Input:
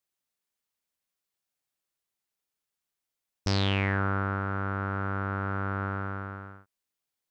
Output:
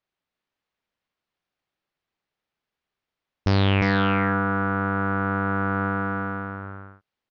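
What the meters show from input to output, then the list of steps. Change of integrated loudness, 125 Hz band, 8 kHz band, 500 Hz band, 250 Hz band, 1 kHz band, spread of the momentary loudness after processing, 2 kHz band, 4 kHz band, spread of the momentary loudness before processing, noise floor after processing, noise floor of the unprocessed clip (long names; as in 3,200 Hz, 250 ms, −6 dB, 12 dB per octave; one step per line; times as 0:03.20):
+7.0 dB, +5.5 dB, can't be measured, +8.0 dB, +9.5 dB, +7.5 dB, 13 LU, +7.5 dB, +3.0 dB, 11 LU, below −85 dBFS, below −85 dBFS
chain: high-frequency loss of the air 240 metres
single-tap delay 353 ms −4 dB
level +7.5 dB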